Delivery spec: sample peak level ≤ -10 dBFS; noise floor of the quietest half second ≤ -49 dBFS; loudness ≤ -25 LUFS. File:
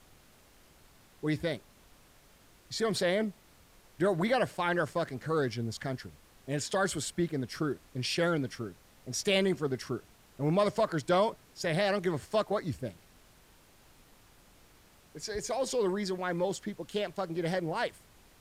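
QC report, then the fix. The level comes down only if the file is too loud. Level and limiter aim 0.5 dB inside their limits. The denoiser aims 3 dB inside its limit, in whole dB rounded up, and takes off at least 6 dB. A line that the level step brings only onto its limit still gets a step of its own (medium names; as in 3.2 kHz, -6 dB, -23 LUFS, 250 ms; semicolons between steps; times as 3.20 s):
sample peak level -16.0 dBFS: pass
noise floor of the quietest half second -60 dBFS: pass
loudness -32.0 LUFS: pass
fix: none needed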